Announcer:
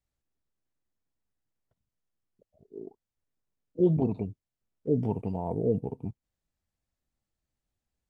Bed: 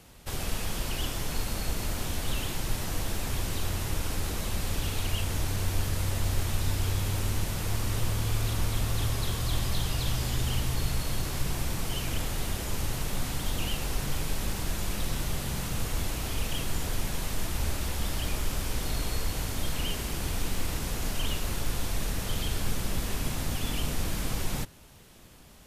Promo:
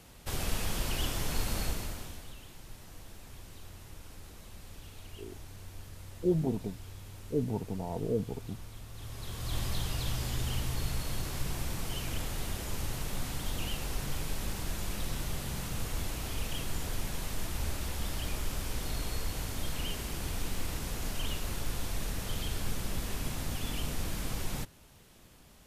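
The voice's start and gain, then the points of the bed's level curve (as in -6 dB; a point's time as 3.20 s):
2.45 s, -4.5 dB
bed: 1.63 s -1 dB
2.36 s -18 dB
8.91 s -18 dB
9.59 s -4.5 dB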